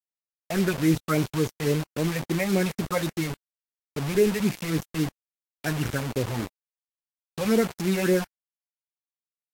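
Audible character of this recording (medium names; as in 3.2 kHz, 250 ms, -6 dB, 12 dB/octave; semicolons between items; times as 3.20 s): phasing stages 6, 3.6 Hz, lowest notch 320–1400 Hz; a quantiser's noise floor 6-bit, dither none; Vorbis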